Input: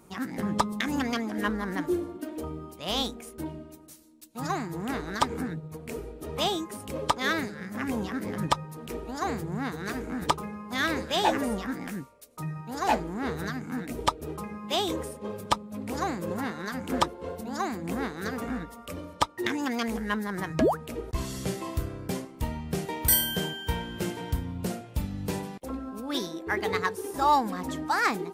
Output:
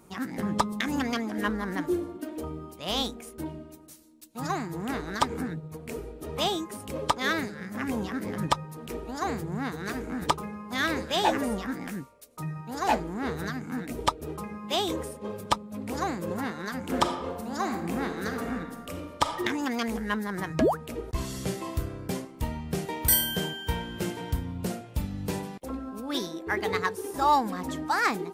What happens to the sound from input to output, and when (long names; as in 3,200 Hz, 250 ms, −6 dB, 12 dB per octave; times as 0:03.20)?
0:16.81–0:19.36: thrown reverb, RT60 1.1 s, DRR 5.5 dB